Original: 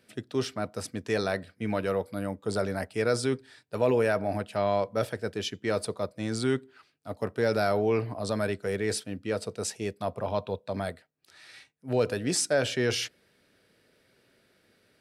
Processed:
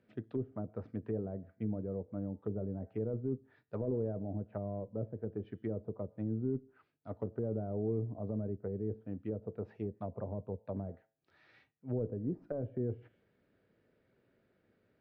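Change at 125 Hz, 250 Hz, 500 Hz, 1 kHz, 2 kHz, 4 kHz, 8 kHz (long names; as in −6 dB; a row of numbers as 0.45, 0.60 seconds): −3.5 dB, −6.0 dB, −11.5 dB, −18.5 dB, below −25 dB, below −40 dB, below −40 dB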